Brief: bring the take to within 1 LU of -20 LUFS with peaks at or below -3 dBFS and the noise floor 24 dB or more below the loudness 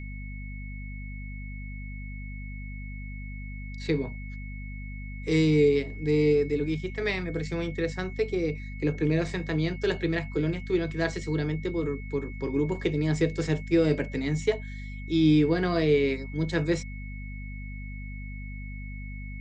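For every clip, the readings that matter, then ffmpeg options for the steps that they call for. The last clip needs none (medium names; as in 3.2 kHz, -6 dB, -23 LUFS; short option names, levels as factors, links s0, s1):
hum 50 Hz; highest harmonic 250 Hz; hum level -35 dBFS; steady tone 2.2 kHz; tone level -45 dBFS; loudness -27.0 LUFS; peak level -11.5 dBFS; loudness target -20.0 LUFS
-> -af "bandreject=f=50:t=h:w=4,bandreject=f=100:t=h:w=4,bandreject=f=150:t=h:w=4,bandreject=f=200:t=h:w=4,bandreject=f=250:t=h:w=4"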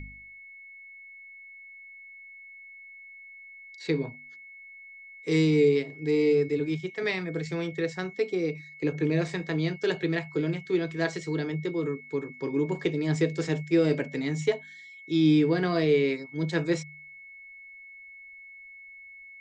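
hum not found; steady tone 2.2 kHz; tone level -45 dBFS
-> -af "bandreject=f=2200:w=30"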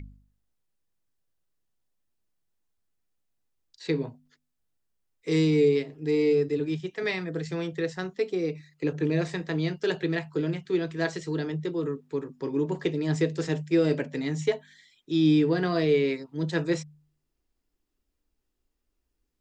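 steady tone not found; loudness -27.5 LUFS; peak level -12.5 dBFS; loudness target -20.0 LUFS
-> -af "volume=2.37"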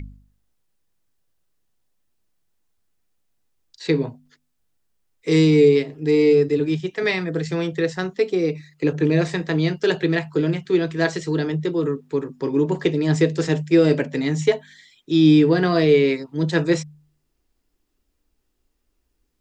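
loudness -20.0 LUFS; peak level -5.0 dBFS; noise floor -72 dBFS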